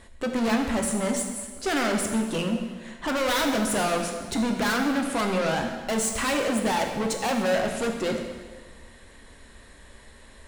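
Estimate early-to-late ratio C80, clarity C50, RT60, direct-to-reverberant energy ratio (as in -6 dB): 6.5 dB, 5.0 dB, 1.5 s, 2.5 dB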